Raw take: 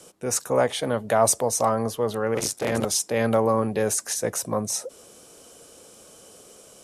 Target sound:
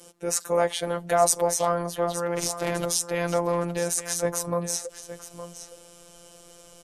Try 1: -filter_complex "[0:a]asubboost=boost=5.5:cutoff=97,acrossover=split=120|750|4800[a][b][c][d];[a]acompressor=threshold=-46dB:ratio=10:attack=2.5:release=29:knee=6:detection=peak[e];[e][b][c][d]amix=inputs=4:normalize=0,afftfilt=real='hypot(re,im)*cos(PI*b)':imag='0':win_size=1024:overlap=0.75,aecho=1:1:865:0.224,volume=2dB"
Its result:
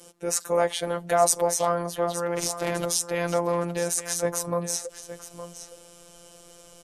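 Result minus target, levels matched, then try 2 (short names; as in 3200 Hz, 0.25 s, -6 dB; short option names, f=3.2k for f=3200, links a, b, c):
compressor: peak gain reduction +7.5 dB
-filter_complex "[0:a]asubboost=boost=5.5:cutoff=97,acrossover=split=120|750|4800[a][b][c][d];[a]acompressor=threshold=-37.5dB:ratio=10:attack=2.5:release=29:knee=6:detection=peak[e];[e][b][c][d]amix=inputs=4:normalize=0,afftfilt=real='hypot(re,im)*cos(PI*b)':imag='0':win_size=1024:overlap=0.75,aecho=1:1:865:0.224,volume=2dB"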